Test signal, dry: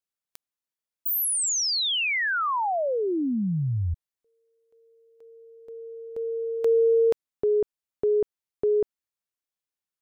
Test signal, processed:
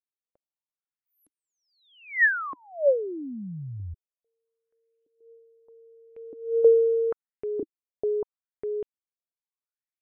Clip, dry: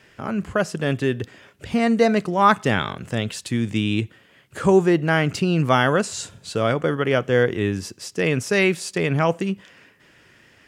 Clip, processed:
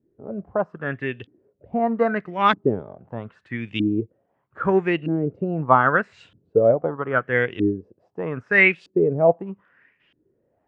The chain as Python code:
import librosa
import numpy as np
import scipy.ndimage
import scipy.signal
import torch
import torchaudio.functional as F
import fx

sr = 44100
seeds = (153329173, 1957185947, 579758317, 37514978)

y = fx.filter_lfo_lowpass(x, sr, shape='saw_up', hz=0.79, low_hz=290.0, high_hz=3200.0, q=4.6)
y = fx.upward_expand(y, sr, threshold_db=-34.0, expansion=1.5)
y = y * 10.0 ** (-2.5 / 20.0)